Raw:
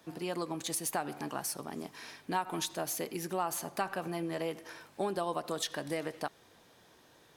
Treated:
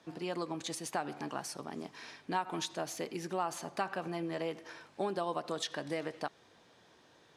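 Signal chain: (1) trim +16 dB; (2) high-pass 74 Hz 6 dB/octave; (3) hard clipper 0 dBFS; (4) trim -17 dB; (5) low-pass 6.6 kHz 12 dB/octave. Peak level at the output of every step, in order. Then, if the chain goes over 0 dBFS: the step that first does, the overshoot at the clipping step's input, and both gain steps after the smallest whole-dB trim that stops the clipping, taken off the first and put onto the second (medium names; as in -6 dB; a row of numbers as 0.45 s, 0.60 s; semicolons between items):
-1.5 dBFS, -1.5 dBFS, -1.5 dBFS, -18.5 dBFS, -18.5 dBFS; nothing clips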